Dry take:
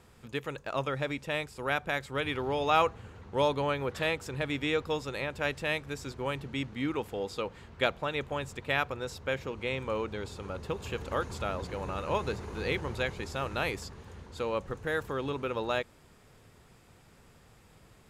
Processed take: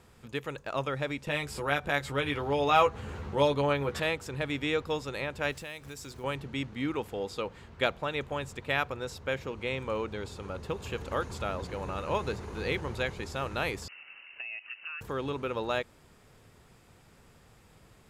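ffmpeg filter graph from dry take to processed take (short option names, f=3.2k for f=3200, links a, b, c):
-filter_complex "[0:a]asettb=1/sr,asplit=3[a][b][c];[a]atrim=end=1.274[d];[b]atrim=start=1.27:end=4,asetpts=PTS-STARTPTS,afade=t=in:d=0.004:c=qsin,afade=t=out:st=2.726:d=0.004:c=qsin,acompressor=mode=upward:threshold=-30dB:ratio=2.5:attack=3.2:release=140:knee=2.83:detection=peak,asplit=2[e][f];[f]adelay=14,volume=-5dB[g];[e][g]amix=inputs=2:normalize=0,atrim=end_sample=120393[h];[c]atrim=start=3.996[i];[d][h]acrossfade=d=0.004:c1=hsin:c2=qsin[j];[j][i]acrossfade=d=0.004:c1=qsin:c2=hsin,asettb=1/sr,asplit=3[k][l][m];[k]atrim=end=5.524[n];[l]atrim=start=5.52:end=6.24,asetpts=PTS-STARTPTS,afade=t=in:d=0.004:c=qsin,afade=t=out:st=0.716:d=0.004:c=qsin,highshelf=f=4.6k:g=10.5,acompressor=threshold=-41dB:ratio=3:attack=3.2:release=140:knee=1:detection=peak,acrusher=bits=6:mode=log:mix=0:aa=0.000001[o];[m]atrim=start=6.236[p];[n][o]acrossfade=d=0.004:c1=hsin:c2=qsin[q];[q][p]acrossfade=d=0.004:c1=qsin:c2=hsin,asettb=1/sr,asplit=3[r][s][t];[r]atrim=end=13.884[u];[s]atrim=start=13.88:end=15.01,asetpts=PTS-STARTPTS,afade=t=in:d=0.004:c=qsin,afade=t=out:st=1.126:d=0.004:c=qsin,highpass=f=340:t=q:w=1.9,acompressor=threshold=-36dB:ratio=12:attack=3.2:release=140:knee=1:detection=peak,lowpass=f=2.6k:t=q:w=0.5098,lowpass=f=2.6k:t=q:w=0.6013,lowpass=f=2.6k:t=q:w=0.9,lowpass=f=2.6k:t=q:w=2.563,afreqshift=-3100[v];[t]atrim=start=15.006[w];[u][v]acrossfade=d=0.004:c1=hsin:c2=qsin[x];[x][w]acrossfade=d=0.004:c1=qsin:c2=hsin"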